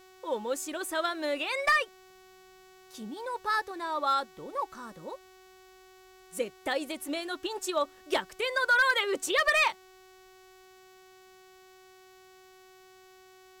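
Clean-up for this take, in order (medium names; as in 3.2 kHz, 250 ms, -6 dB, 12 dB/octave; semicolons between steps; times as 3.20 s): clip repair -18 dBFS; de-hum 374.1 Hz, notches 21; expander -48 dBFS, range -21 dB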